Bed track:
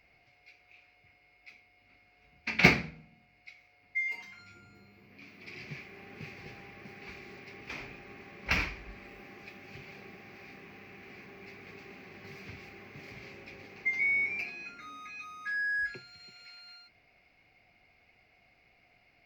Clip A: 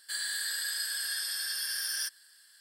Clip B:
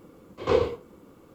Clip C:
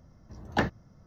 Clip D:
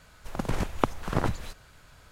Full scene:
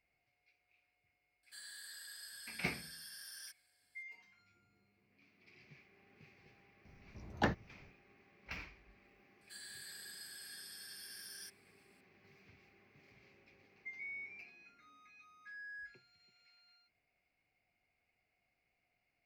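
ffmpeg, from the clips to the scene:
-filter_complex "[1:a]asplit=2[a][b];[0:a]volume=-17.5dB[c];[a]equalizer=f=170:w=0.44:g=7.5,atrim=end=2.6,asetpts=PTS-STARTPTS,volume=-18dB,afade=t=in:d=0.004:c=hsin,afade=t=out:st=2.596:d=0.004:c=hsin,adelay=1430[d];[3:a]atrim=end=1.06,asetpts=PTS-STARTPTS,volume=-6.5dB,afade=t=in:d=0.004:c=hsin,afade=t=out:st=1.056:d=0.004:c=hsin,adelay=6850[e];[b]atrim=end=2.6,asetpts=PTS-STARTPTS,volume=-17.5dB,afade=t=in:d=0.004:c=hsin,afade=t=out:st=2.596:d=0.004:c=hsin,adelay=9410[f];[c][d][e][f]amix=inputs=4:normalize=0"

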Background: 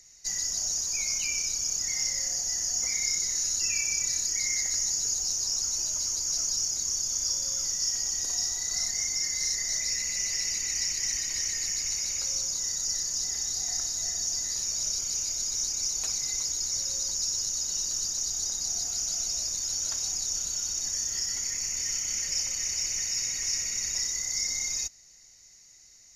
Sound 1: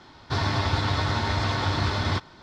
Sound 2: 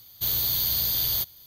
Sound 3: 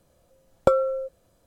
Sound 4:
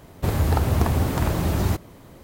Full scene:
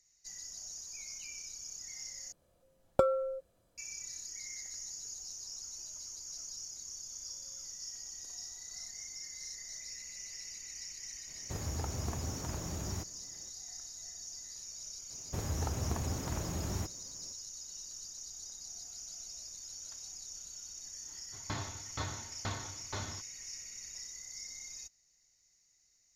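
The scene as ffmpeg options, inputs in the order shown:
-filter_complex "[4:a]asplit=2[a][b];[0:a]volume=-16dB[c];[1:a]aeval=exprs='val(0)*pow(10,-30*if(lt(mod(2.1*n/s,1),2*abs(2.1)/1000),1-mod(2.1*n/s,1)/(2*abs(2.1)/1000),(mod(2.1*n/s,1)-2*abs(2.1)/1000)/(1-2*abs(2.1)/1000))/20)':c=same[d];[c]asplit=2[e][f];[e]atrim=end=2.324[g];[3:a]atrim=end=1.46,asetpts=PTS-STARTPTS,volume=-8dB[h];[f]atrim=start=3.776[i];[a]atrim=end=2.23,asetpts=PTS-STARTPTS,volume=-17.5dB,afade=t=in:d=0.004:c=hsin,afade=t=out:st=2.226:d=0.004:c=hsin,adelay=11270[j];[b]atrim=end=2.23,asetpts=PTS-STARTPTS,volume=-15dB,afade=t=in:d=0.004:c=hsin,afade=t=out:st=2.226:d=0.004:c=hsin,adelay=15100[k];[d]atrim=end=2.42,asetpts=PTS-STARTPTS,volume=-9dB,afade=t=in:d=0.1,afade=t=out:st=2.32:d=0.1,adelay=21020[l];[g][h]acrossfade=d=0.004:c1=hsin:c2=hsin[m];[m][i]acrossfade=d=0.004:c1=hsin:c2=hsin[n];[n][j][k][l]amix=inputs=4:normalize=0"

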